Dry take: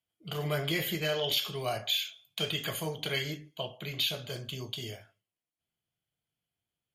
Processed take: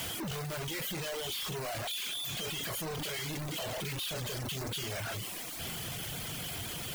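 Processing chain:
sign of each sample alone
noise that follows the level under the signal 12 dB
reverb reduction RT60 0.66 s

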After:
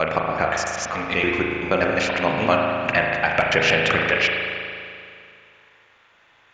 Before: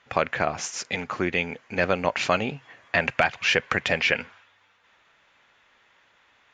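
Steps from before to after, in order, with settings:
slices reordered back to front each 95 ms, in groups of 3
spring reverb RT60 2.4 s, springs 37 ms, chirp 70 ms, DRR −0.5 dB
level +2 dB

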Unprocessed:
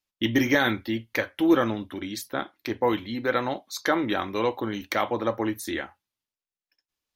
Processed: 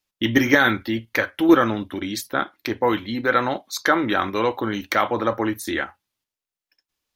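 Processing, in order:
in parallel at −1 dB: output level in coarse steps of 18 dB
on the sum: dynamic equaliser 1,400 Hz, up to +6 dB, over −40 dBFS, Q 2.2
level +1.5 dB

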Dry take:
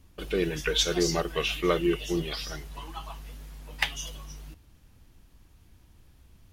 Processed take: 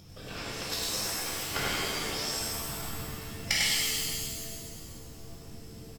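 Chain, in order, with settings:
harmonic generator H 3 −9 dB, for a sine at −7.5 dBFS
upward compression, threshold −35 dBFS
random phases in short frames
speed change +9%
parametric band 5,300 Hz +14.5 dB 0.26 octaves
on a send: single-tap delay 99 ms −3.5 dB
on the sum: reverb with rising layers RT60 1.8 s, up +7 semitones, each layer −2 dB, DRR −6.5 dB
level −1.5 dB

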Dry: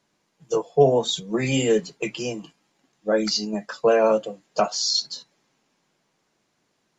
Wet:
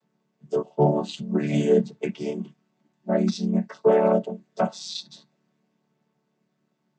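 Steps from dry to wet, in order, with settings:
channel vocoder with a chord as carrier major triad, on D3

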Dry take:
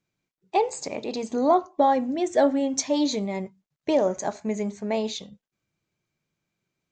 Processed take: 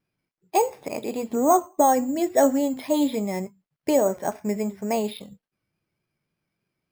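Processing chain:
pitch vibrato 3.5 Hz 68 cents
bad sample-rate conversion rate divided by 6×, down filtered, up hold
level +1.5 dB

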